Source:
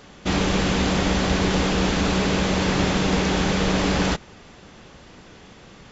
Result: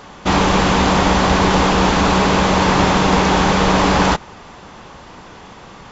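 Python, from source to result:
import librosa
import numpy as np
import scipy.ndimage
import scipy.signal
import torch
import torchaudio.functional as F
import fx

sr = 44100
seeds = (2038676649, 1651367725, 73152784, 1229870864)

y = fx.peak_eq(x, sr, hz=970.0, db=9.5, octaves=0.97)
y = y * librosa.db_to_amplitude(5.0)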